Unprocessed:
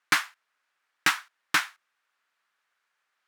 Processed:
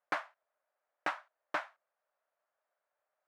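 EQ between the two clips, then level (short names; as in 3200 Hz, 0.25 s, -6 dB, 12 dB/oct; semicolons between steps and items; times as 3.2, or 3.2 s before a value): band-pass 610 Hz, Q 5.8; +9.5 dB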